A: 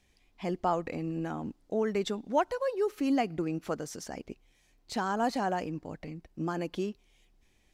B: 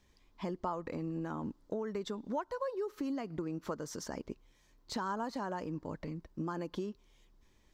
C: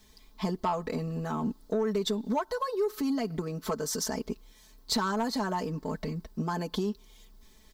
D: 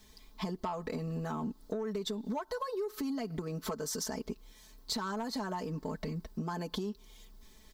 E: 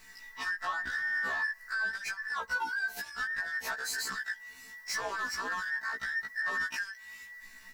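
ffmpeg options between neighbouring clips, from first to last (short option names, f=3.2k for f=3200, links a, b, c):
-af "equalizer=f=750:t=o:w=0.2:g=-11.5,acompressor=threshold=-35dB:ratio=10,equalizer=f=1k:t=o:w=0.67:g=6,equalizer=f=2.5k:t=o:w=0.67:g=-7,equalizer=f=10k:t=o:w=0.67:g=-8,volume=1dB"
-af "aecho=1:1:4.6:0.82,asoftclip=type=tanh:threshold=-25.5dB,aexciter=amount=1.9:drive=6.1:freq=3.6k,volume=6dB"
-af "acompressor=threshold=-34dB:ratio=4"
-af "afftfilt=real='real(if(between(b,1,1012),(2*floor((b-1)/92)+1)*92-b,b),0)':imag='imag(if(between(b,1,1012),(2*floor((b-1)/92)+1)*92-b,b),0)*if(between(b,1,1012),-1,1)':win_size=2048:overlap=0.75,asoftclip=type=tanh:threshold=-34dB,afftfilt=real='re*1.73*eq(mod(b,3),0)':imag='im*1.73*eq(mod(b,3),0)':win_size=2048:overlap=0.75,volume=7dB"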